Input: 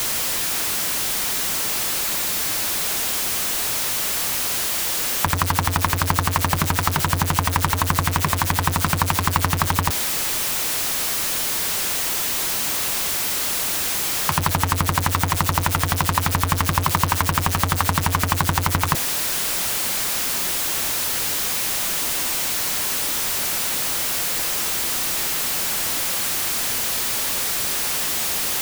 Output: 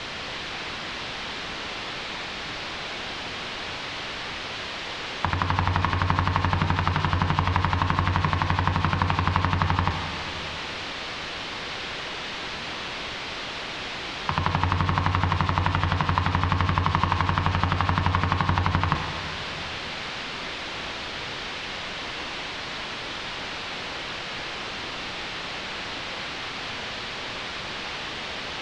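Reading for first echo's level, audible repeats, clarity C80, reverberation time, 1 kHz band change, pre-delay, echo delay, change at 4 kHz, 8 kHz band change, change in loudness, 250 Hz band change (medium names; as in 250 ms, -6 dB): no echo, no echo, 6.0 dB, 2.8 s, -2.5 dB, 20 ms, no echo, -5.5 dB, -24.0 dB, -7.5 dB, -2.0 dB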